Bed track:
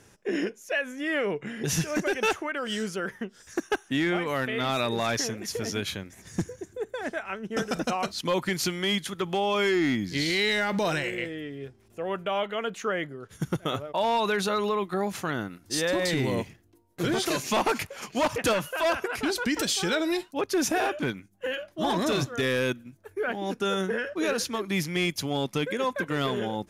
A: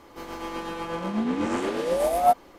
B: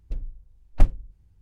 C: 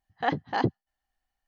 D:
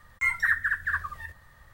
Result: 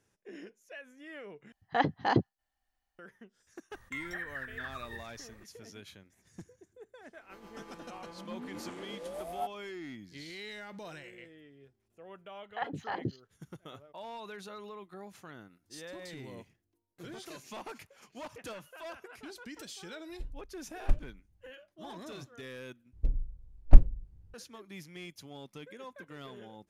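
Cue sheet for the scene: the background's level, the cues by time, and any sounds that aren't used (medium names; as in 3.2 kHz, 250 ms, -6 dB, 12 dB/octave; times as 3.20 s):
bed track -19 dB
1.52 s: replace with C -1 dB
3.71 s: add D -5 dB + compression 5:1, threshold -33 dBFS
7.14 s: add A -17.5 dB
12.34 s: add C -8 dB + three bands offset in time mids, lows, highs 70/210 ms, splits 450/4200 Hz
20.09 s: add B -10.5 dB
22.93 s: replace with B -3 dB + tilt shelf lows +5 dB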